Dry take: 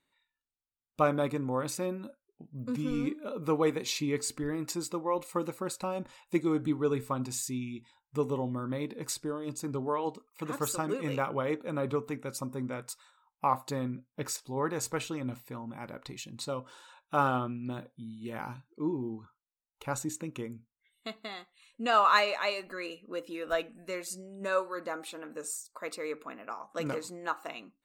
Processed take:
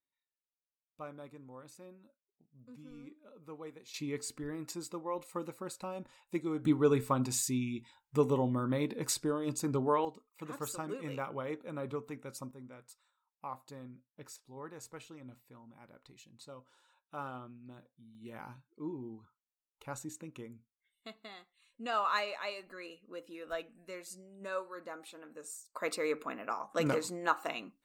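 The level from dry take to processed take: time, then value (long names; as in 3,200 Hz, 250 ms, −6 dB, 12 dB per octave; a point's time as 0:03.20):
−19.5 dB
from 0:03.94 −7 dB
from 0:06.65 +2 dB
from 0:10.05 −7.5 dB
from 0:12.51 −15 dB
from 0:18.15 −8.5 dB
from 0:25.75 +3 dB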